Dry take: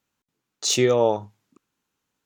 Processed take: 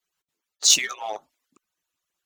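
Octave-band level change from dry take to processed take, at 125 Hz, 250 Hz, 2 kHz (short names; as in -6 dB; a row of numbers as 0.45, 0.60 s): under -25 dB, -20.5 dB, +3.5 dB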